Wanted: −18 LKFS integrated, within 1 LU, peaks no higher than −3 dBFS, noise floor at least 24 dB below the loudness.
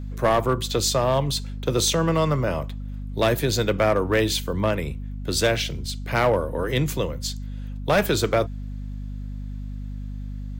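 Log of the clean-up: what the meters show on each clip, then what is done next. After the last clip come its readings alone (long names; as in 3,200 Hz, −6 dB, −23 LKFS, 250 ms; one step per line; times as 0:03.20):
share of clipped samples 0.8%; peaks flattened at −13.0 dBFS; mains hum 50 Hz; hum harmonics up to 250 Hz; level of the hum −30 dBFS; integrated loudness −23.5 LKFS; sample peak −13.0 dBFS; target loudness −18.0 LKFS
→ clipped peaks rebuilt −13 dBFS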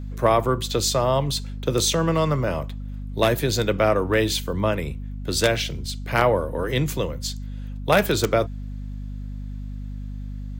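share of clipped samples 0.0%; mains hum 50 Hz; hum harmonics up to 250 Hz; level of the hum −30 dBFS
→ hum removal 50 Hz, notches 5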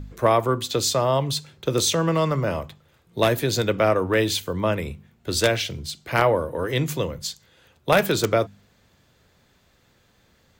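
mains hum none found; integrated loudness −23.0 LKFS; sample peak −3.5 dBFS; target loudness −18.0 LKFS
→ level +5 dB
brickwall limiter −3 dBFS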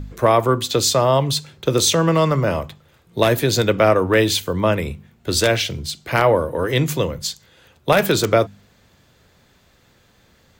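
integrated loudness −18.5 LKFS; sample peak −3.0 dBFS; background noise floor −57 dBFS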